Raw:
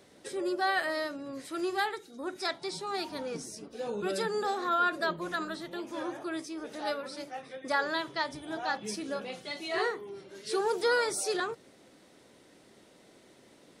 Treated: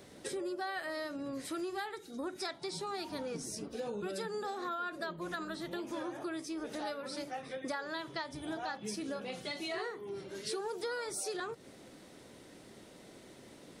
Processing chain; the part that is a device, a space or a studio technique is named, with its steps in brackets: ASMR close-microphone chain (bass shelf 180 Hz +6.5 dB; compression 6:1, threshold -39 dBFS, peak gain reduction 15 dB; treble shelf 12 kHz +4.5 dB); trim +2.5 dB

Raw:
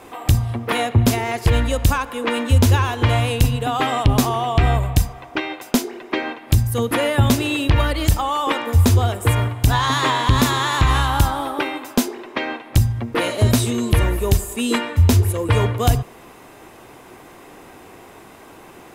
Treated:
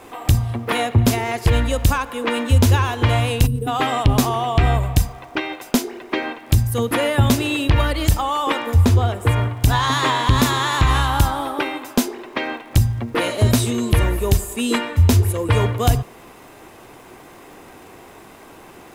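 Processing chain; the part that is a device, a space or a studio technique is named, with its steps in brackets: 3.46–3.67 s: time-frequency box 480–8000 Hz -21 dB; 8.74–9.62 s: treble shelf 5.1 kHz -9.5 dB; vinyl LP (crackle 59 per s -39 dBFS; pink noise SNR 42 dB)

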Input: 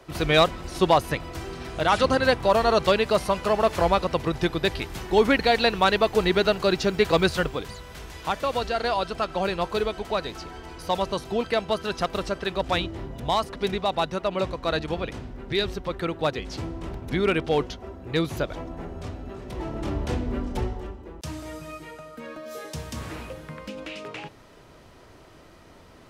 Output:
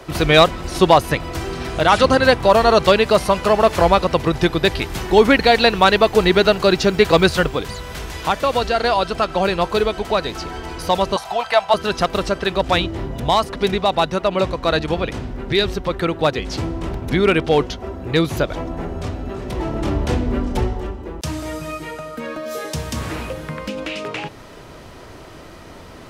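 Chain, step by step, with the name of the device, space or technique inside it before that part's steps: parallel compression (in parallel at -2.5 dB: compression, threshold -38 dBFS, peak gain reduction 22.5 dB); 11.16–11.74 s: on the sum: resonant low shelf 510 Hz -14 dB, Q 3; trim +6.5 dB

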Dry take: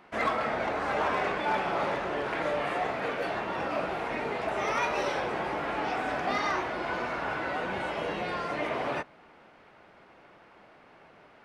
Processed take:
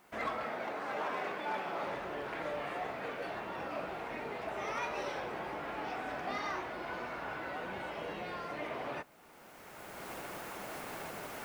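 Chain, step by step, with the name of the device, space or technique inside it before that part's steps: 0.46–1.87 s: high-pass 170 Hz 12 dB/octave; cheap recorder with automatic gain (white noise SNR 32 dB; recorder AGC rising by 18 dB/s); trim -8.5 dB

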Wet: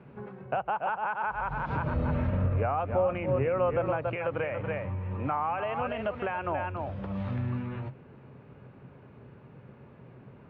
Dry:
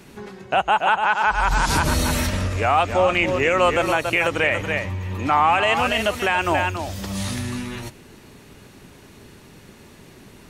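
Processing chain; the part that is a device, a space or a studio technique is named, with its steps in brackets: bass amplifier (compression 4:1, threshold -21 dBFS, peak gain reduction 7.5 dB; cabinet simulation 69–2100 Hz, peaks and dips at 130 Hz +10 dB, 330 Hz -4 dB, 520 Hz +5 dB, 1.9 kHz -8 dB); 1.94–4.08 s: tilt EQ -1.5 dB/octave; trim -6 dB

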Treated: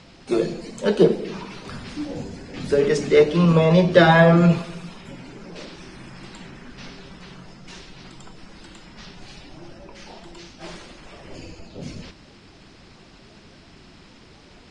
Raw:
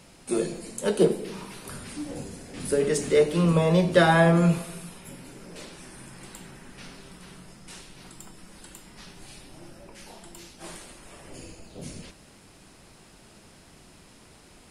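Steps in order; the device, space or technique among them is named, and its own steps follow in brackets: clip after many re-uploads (low-pass 5.9 kHz 24 dB/octave; coarse spectral quantiser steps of 15 dB); trim +5.5 dB

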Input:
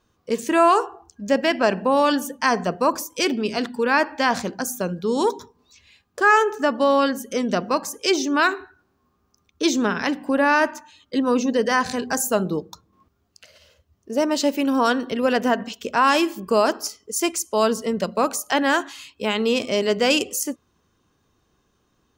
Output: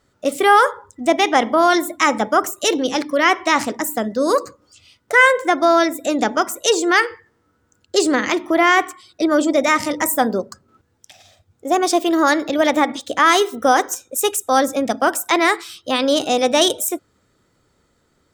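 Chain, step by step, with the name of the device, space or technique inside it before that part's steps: nightcore (tape speed +21%); trim +4 dB

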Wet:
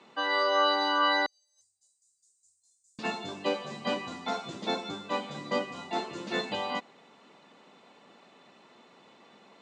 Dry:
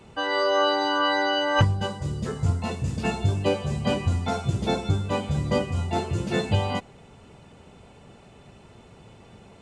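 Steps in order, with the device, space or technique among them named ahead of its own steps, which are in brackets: television speaker (cabinet simulation 230–7100 Hz, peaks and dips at 410 Hz -4 dB, 1.1 kHz +6 dB, 1.9 kHz +5 dB, 3.9 kHz +7 dB); 1.26–2.99 s: inverse Chebyshev band-stop 120–2900 Hz, stop band 60 dB; trim -5 dB

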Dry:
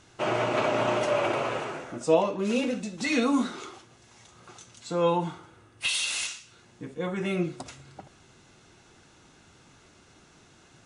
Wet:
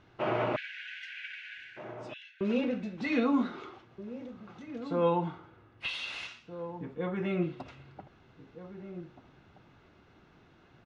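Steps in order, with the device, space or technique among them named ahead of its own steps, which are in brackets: 0.56–2.41 s: Chebyshev high-pass 1.5 kHz, order 10; shout across a valley (distance through air 310 m; echo from a far wall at 270 m, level -12 dB); trim -2 dB

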